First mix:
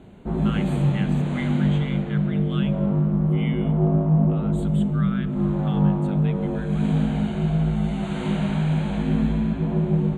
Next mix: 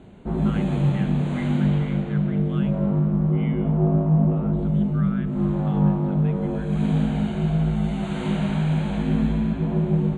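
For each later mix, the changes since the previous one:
speech: add distance through air 460 m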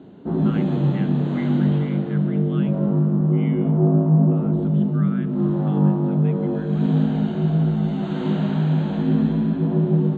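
background: add cabinet simulation 130–5400 Hz, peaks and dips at 160 Hz +4 dB, 290 Hz +10 dB, 420 Hz +4 dB, 2.3 kHz -9 dB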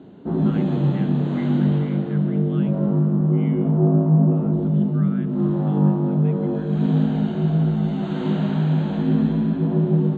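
speech -3.5 dB

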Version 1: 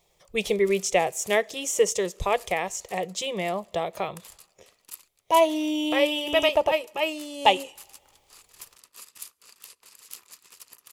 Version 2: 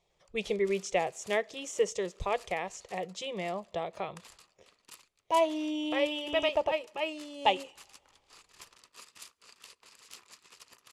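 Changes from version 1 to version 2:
speech -6.5 dB; master: add distance through air 75 m

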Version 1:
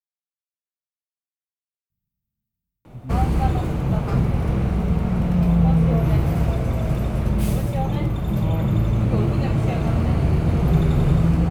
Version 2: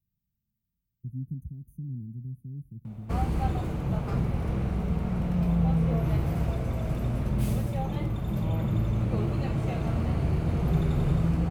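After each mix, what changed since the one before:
speech: entry -1.90 s; background -7.5 dB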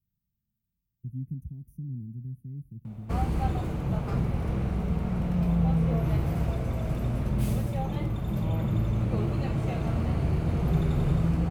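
speech: remove brick-wall FIR band-stop 680–6000 Hz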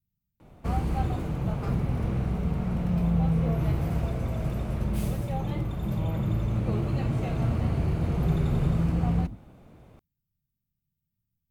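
background: entry -2.45 s

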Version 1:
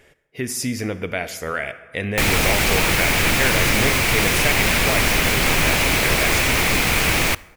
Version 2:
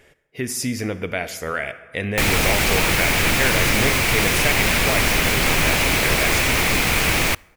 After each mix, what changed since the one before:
background: send -6.5 dB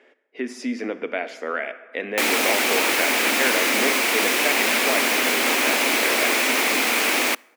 speech: add Bessel low-pass 2.7 kHz, order 2; master: add elliptic high-pass 240 Hz, stop band 50 dB

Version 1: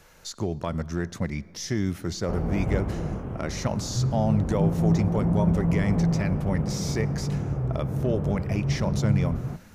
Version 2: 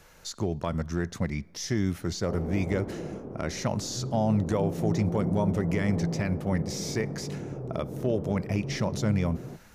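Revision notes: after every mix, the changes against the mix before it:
speech: send -8.5 dB; background: add band-pass filter 390 Hz, Q 1.2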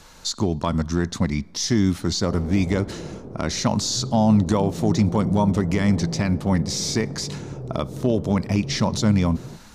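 speech: add ten-band graphic EQ 250 Hz +9 dB, 1 kHz +9 dB, 4 kHz +11 dB, 8 kHz +8 dB; master: add bass shelf 110 Hz +9 dB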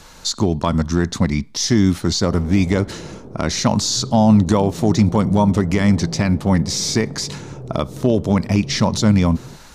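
speech +5.0 dB; reverb: off

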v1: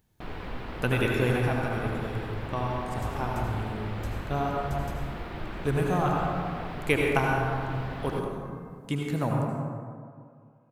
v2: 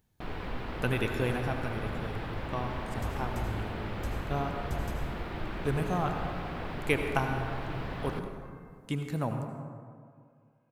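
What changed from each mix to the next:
speech: send -9.0 dB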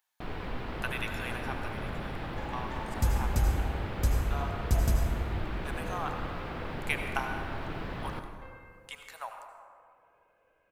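speech: add high-pass 820 Hz 24 dB/octave; second sound +11.5 dB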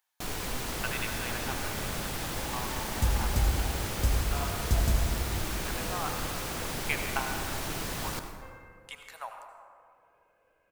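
first sound: remove distance through air 420 m

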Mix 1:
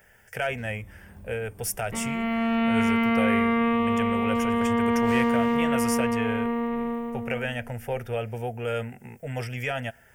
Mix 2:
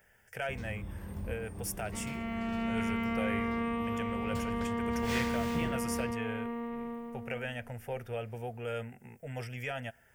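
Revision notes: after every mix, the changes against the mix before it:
speech -8.0 dB; first sound +7.0 dB; second sound -10.5 dB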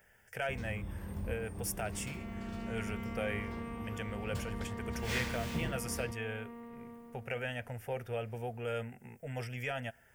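second sound -10.5 dB

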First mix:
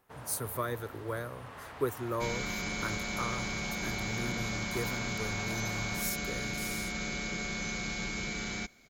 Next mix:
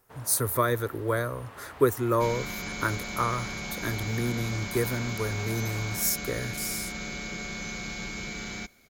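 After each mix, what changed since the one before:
speech +9.5 dB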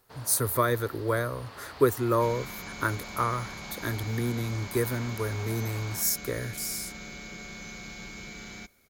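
first sound: add peaking EQ 4.5 kHz +14 dB 0.56 oct; second sound -6.0 dB

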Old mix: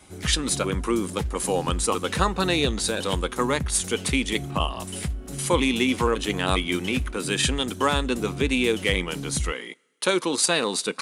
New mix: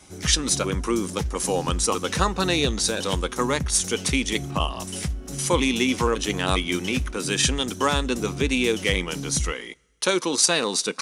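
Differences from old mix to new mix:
background: send on; master: add peaking EQ 5.8 kHz +9.5 dB 0.43 oct

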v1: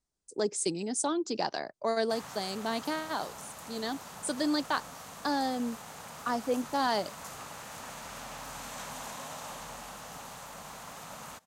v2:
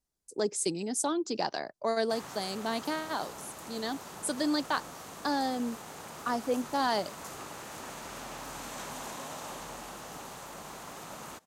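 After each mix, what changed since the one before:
speech: remove brick-wall FIR low-pass 10 kHz; background: add peaking EQ 350 Hz +11.5 dB 0.55 oct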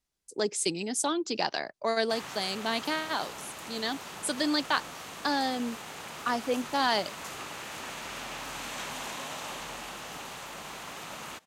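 master: add peaking EQ 2.7 kHz +9 dB 1.6 oct

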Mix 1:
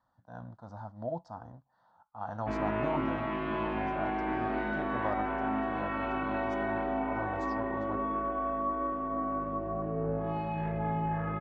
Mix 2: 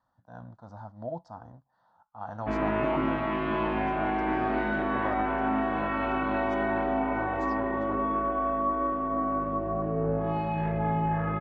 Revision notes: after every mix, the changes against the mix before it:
background +4.5 dB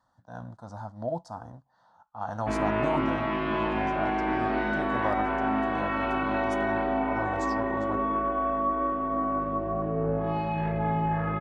speech +4.0 dB; master: remove distance through air 150 m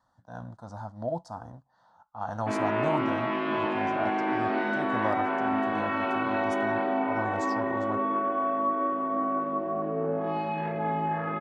background: add high-pass 190 Hz 24 dB/octave

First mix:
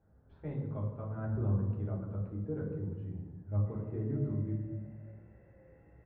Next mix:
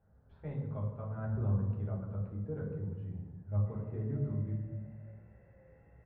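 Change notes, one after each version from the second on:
master: add peaking EQ 320 Hz -9 dB 0.47 oct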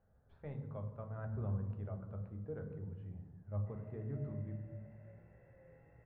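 speech: send -7.5 dB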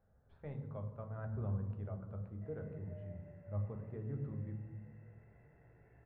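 background: entry -1.25 s

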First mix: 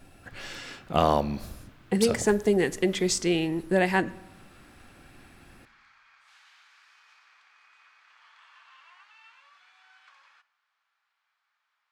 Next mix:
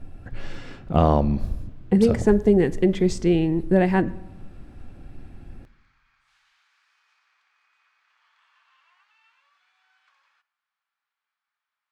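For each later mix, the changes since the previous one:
speech: add tilt EQ -3.5 dB/octave; background -8.0 dB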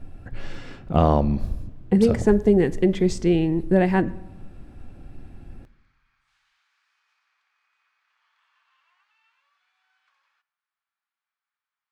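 background -4.5 dB

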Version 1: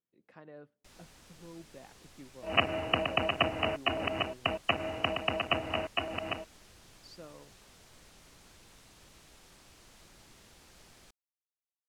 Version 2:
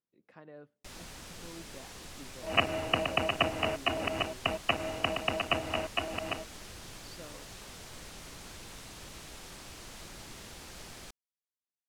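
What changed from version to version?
first sound +10.5 dB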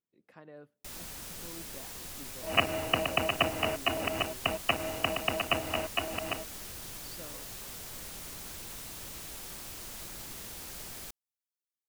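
master: remove distance through air 53 m

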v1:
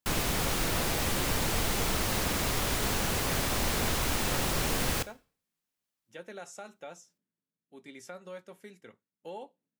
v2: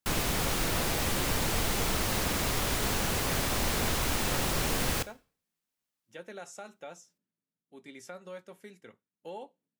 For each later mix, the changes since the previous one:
no change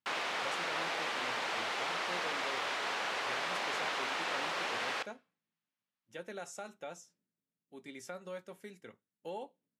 background: add band-pass 690–3200 Hz

